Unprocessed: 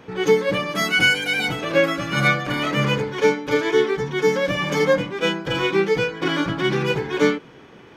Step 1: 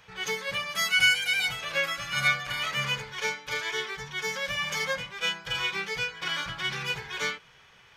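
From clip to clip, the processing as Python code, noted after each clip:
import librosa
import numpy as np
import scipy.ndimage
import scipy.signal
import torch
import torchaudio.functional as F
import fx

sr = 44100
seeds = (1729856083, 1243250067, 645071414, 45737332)

y = fx.tone_stack(x, sr, knobs='10-0-10')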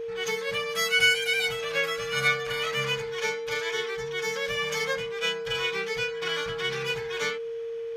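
y = x + 10.0 ** (-31.0 / 20.0) * np.sin(2.0 * np.pi * 460.0 * np.arange(len(x)) / sr)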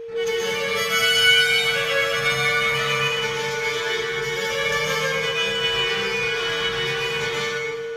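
y = fx.rev_plate(x, sr, seeds[0], rt60_s=1.9, hf_ratio=0.75, predelay_ms=110, drr_db=-7.0)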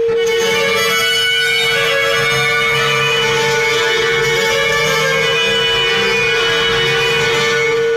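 y = fx.env_flatten(x, sr, amount_pct=100)
y = y * 10.0 ** (-1.0 / 20.0)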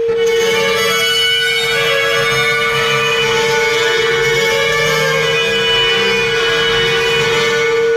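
y = x + 10.0 ** (-6.0 / 20.0) * np.pad(x, (int(91 * sr / 1000.0), 0))[:len(x)]
y = y * 10.0 ** (-1.0 / 20.0)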